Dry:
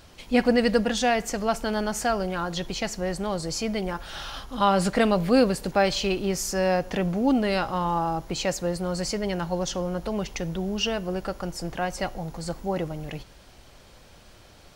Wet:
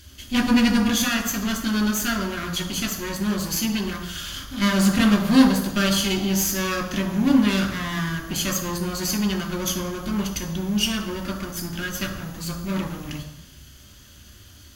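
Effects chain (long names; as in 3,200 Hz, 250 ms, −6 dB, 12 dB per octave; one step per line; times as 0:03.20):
lower of the sound and its delayed copy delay 0.63 ms
parametric band 13,000 Hz +13 dB 0.73 octaves
convolution reverb RT60 0.90 s, pre-delay 3 ms, DRR 2 dB
level −1.5 dB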